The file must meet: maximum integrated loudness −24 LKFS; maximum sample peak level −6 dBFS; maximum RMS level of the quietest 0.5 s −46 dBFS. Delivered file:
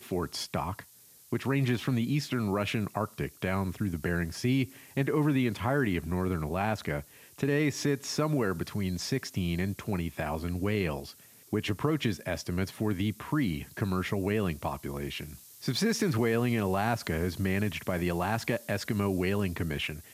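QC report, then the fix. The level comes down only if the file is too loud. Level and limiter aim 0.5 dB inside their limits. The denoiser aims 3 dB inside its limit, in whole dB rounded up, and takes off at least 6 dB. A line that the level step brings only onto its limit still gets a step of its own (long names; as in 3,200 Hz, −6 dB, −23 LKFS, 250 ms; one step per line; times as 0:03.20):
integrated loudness −31.0 LKFS: in spec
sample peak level −13.5 dBFS: in spec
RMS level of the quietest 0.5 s −56 dBFS: in spec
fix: no processing needed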